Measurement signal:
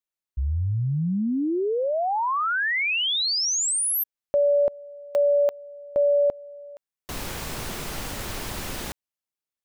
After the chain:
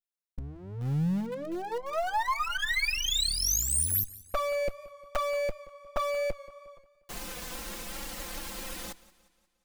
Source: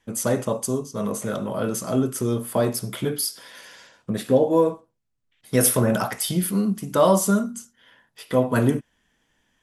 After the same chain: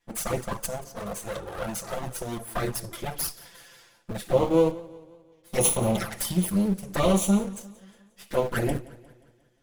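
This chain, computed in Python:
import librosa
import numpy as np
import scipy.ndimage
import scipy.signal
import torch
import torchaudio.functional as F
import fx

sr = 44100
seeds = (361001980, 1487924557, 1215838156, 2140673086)

p1 = fx.lower_of_two(x, sr, delay_ms=5.8)
p2 = fx.high_shelf(p1, sr, hz=5300.0, db=3.0)
p3 = fx.env_flanger(p2, sr, rest_ms=10.1, full_db=-18.5)
p4 = np.where(np.abs(p3) >= 10.0 ** (-27.5 / 20.0), p3, 0.0)
p5 = p3 + (p4 * 10.0 ** (-10.0 / 20.0))
p6 = fx.echo_warbled(p5, sr, ms=178, feedback_pct=49, rate_hz=2.8, cents=72, wet_db=-20)
y = p6 * 10.0 ** (-3.0 / 20.0)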